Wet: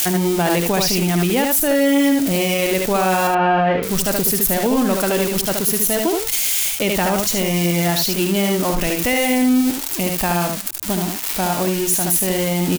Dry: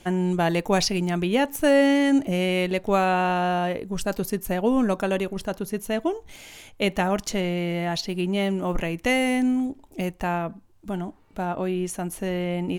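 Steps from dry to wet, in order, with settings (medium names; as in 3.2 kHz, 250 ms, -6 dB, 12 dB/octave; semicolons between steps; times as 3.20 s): zero-crossing glitches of -17.5 dBFS; 3.27–3.83 s: low-pass 2.6 kHz 24 dB/octave; early reflections 57 ms -15.5 dB, 75 ms -4.5 dB; loudness maximiser +17 dB; trim -8 dB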